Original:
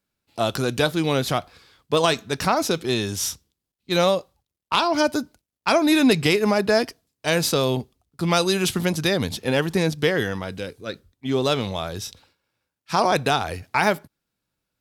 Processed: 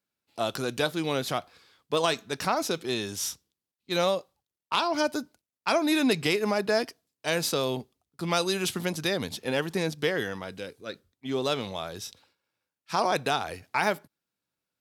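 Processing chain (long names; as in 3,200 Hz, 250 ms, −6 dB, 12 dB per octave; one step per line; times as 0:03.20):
high-pass filter 200 Hz 6 dB per octave
level −5.5 dB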